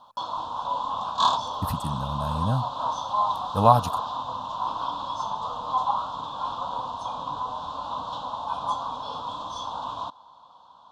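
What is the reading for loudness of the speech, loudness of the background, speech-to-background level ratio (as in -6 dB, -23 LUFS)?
-25.0 LUFS, -29.5 LUFS, 4.5 dB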